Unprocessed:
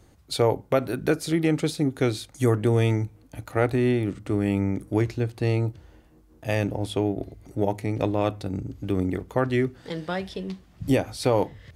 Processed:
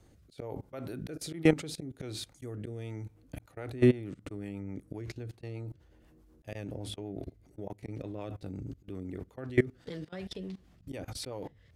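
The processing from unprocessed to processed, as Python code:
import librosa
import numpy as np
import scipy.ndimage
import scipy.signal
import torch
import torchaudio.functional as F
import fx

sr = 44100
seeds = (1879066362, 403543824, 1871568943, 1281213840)

y = fx.auto_swell(x, sr, attack_ms=144.0)
y = fx.rotary_switch(y, sr, hz=1.2, then_hz=8.0, switch_at_s=3.02)
y = fx.level_steps(y, sr, step_db=21)
y = y * librosa.db_to_amplitude(2.5)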